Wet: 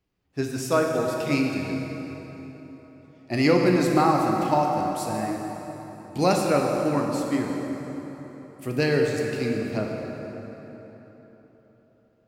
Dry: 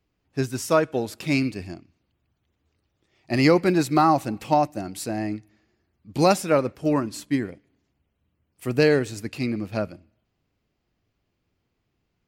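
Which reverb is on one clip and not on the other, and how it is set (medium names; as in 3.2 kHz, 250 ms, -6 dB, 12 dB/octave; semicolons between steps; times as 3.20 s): plate-style reverb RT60 4 s, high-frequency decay 0.65×, DRR 0 dB; trim -3.5 dB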